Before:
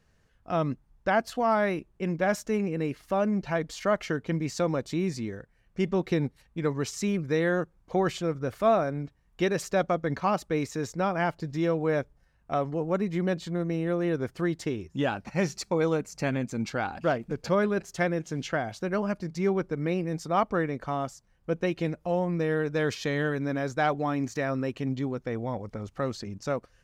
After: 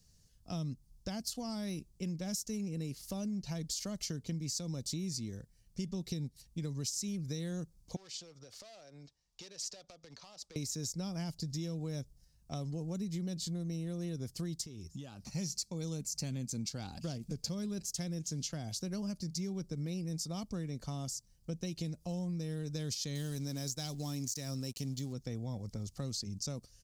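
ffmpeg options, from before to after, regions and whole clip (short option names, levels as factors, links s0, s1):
-filter_complex "[0:a]asettb=1/sr,asplit=3[s0][s1][s2];[s0]atrim=end=7.964[s3];[s1]atrim=start=7.96:end=10.56,asetpts=PTS-STARTPTS,afade=t=in:d=0.004:c=qsin,afade=t=out:st=2.596:d=0.004:c=qsin,volume=14.1,asoftclip=hard,volume=0.0708,acrossover=split=430 6600:gain=0.126 1 0.1[s4][s5][s6];[s4][s5][s6]amix=inputs=3:normalize=0,acompressor=threshold=0.00794:ratio=6:attack=3.2:release=140:knee=1:detection=peak[s7];[s2]atrim=start=10.556[s8];[s3][s7]acrossfade=d=0.004:c1=hsin:c2=qsin[s9];[s9][s8]acrossfade=d=0.004:c1=qsin:c2=hsin,asettb=1/sr,asplit=3[s10][s11][s12];[s10]atrim=end=14.614[s13];[s11]atrim=start=14.61:end=15.3,asetpts=PTS-STARTPTS,afade=t=in:d=0.004:c=qsin,afade=t=out:st=0.686:d=0.004:c=qsin,equalizer=f=1200:w=5.6:g=6.5,acompressor=threshold=0.0126:ratio=6:attack=3.2:release=140:knee=1:detection=peak[s14];[s12]atrim=start=15.296[s15];[s13][s14]acrossfade=d=0.004:c1=hsin:c2=qsin[s16];[s16][s15]acrossfade=d=0.004:c1=qsin:c2=hsin,asettb=1/sr,asplit=3[s17][s18][s19];[s17]atrim=end=23.154[s20];[s18]atrim=start=23.15:end=25.13,asetpts=PTS-STARTPTS,afade=t=in:d=0.004:c=qsin,afade=t=out:st=1.976:d=0.004:c=qsin,highshelf=f=5200:g=11.5,aeval=exprs='sgn(val(0))*max(abs(val(0))-0.00299,0)':c=same[s21];[s19]atrim=start=25.126[s22];[s20][s21]acrossfade=d=0.004:c1=hsin:c2=qsin[s23];[s23][s22]acrossfade=d=0.004:c1=qsin:c2=hsin,acrossover=split=310|3000[s24][s25][s26];[s25]acompressor=threshold=0.0316:ratio=6[s27];[s24][s27][s26]amix=inputs=3:normalize=0,firequalizer=gain_entry='entry(150,0);entry(350,-10);entry(1500,-17);entry(4800,10)':delay=0.05:min_phase=1,acompressor=threshold=0.0178:ratio=6"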